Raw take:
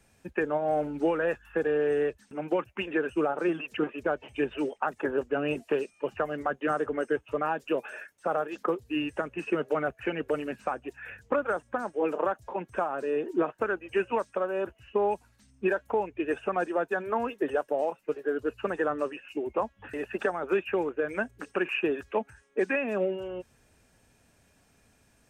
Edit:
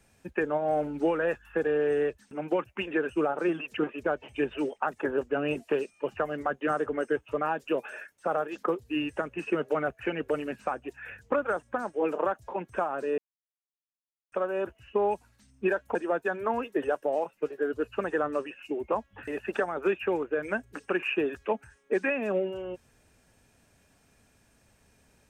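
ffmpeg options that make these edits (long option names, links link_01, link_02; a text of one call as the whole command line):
ffmpeg -i in.wav -filter_complex "[0:a]asplit=4[link_01][link_02][link_03][link_04];[link_01]atrim=end=13.18,asetpts=PTS-STARTPTS,afade=type=out:start_time=13.176:duration=0.004:curve=hsin[link_05];[link_02]atrim=start=13.18:end=14.32,asetpts=PTS-STARTPTS,volume=0[link_06];[link_03]atrim=start=14.32:end=15.952,asetpts=PTS-STARTPTS,afade=type=in:duration=0.004:curve=hsin[link_07];[link_04]atrim=start=16.608[link_08];[link_05][link_06][link_07]concat=n=3:v=0:a=1[link_09];[link_09][link_08]acrossfade=duration=0.004:curve1=hsin:curve2=hsin" out.wav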